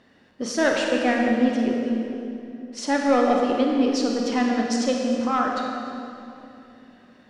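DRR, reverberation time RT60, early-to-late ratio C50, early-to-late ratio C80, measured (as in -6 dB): 0.0 dB, 2.9 s, 1.0 dB, 2.0 dB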